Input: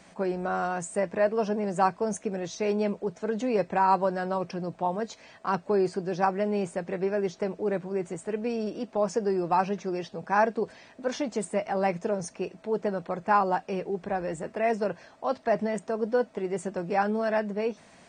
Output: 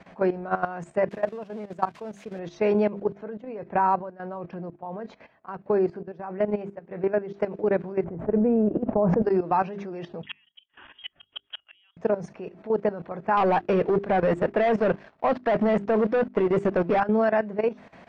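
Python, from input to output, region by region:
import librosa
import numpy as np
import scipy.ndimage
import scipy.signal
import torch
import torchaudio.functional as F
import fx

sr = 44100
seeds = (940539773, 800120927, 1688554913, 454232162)

y = fx.chain(x, sr, fx.crossing_spikes(level_db=-25.5),
    fx.level_steps(step_db=20), at=(1.09, 2.39))
y = fx.chain(y, sr, fx.high_shelf(hz=4600.0, db=-11.5),
    fx.tremolo(hz=1.5, depth=0.8), at=(3.14, 7.34))
y = fx.chain(y, sr, fx.lowpass(hz=1000.0, slope=12),
    fx.low_shelf(hz=190.0, db=11.5),
    fx.sustainer(db_per_s=22.0), at=(8.04, 9.22))
y = fx.chain(y, sr, fx.freq_invert(carrier_hz=3500),
    fx.gate_flip(shuts_db=-19.0, range_db=-37), at=(10.23, 11.97))
y = fx.chain(y, sr, fx.leveller(passes=3),
    fx.upward_expand(threshold_db=-29.0, expansion=1.5), at=(13.37, 17.0))
y = scipy.signal.sosfilt(scipy.signal.butter(2, 2400.0, 'lowpass', fs=sr, output='sos'), y)
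y = fx.hum_notches(y, sr, base_hz=50, count=8)
y = fx.level_steps(y, sr, step_db=14)
y = y * 10.0 ** (7.5 / 20.0)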